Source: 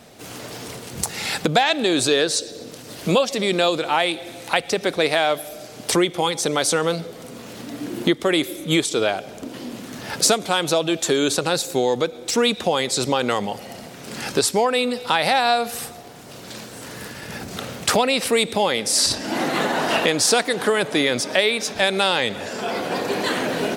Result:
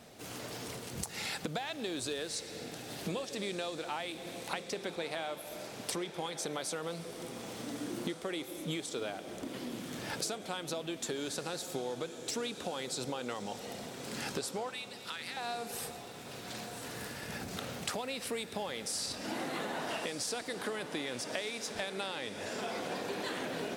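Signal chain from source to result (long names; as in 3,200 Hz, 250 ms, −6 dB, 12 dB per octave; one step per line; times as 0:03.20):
downward compressor, threshold −27 dBFS, peak gain reduction 14 dB
0:14.69–0:15.37: high-pass filter 1,300 Hz 24 dB per octave
feedback delay with all-pass diffusion 1,271 ms, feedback 52%, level −10.5 dB
level −8 dB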